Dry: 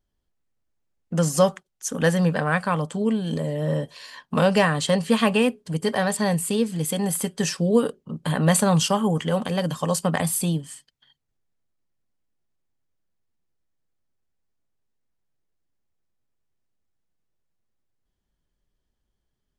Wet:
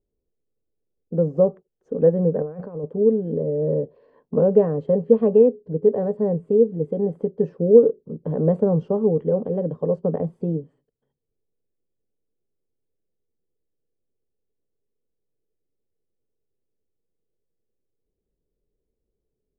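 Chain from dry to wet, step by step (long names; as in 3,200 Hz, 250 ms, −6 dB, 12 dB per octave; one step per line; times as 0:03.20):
0:02.42–0:02.84: compressor whose output falls as the input rises −32 dBFS, ratio −1
low-pass with resonance 450 Hz, resonance Q 4.9
level −3 dB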